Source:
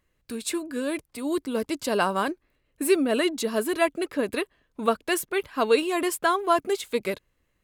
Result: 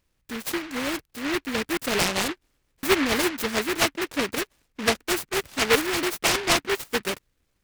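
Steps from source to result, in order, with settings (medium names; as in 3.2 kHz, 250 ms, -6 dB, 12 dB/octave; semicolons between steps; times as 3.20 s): buffer glitch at 1.73/2.79 s, samples 256, times 6; delay time shaken by noise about 1.7 kHz, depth 0.29 ms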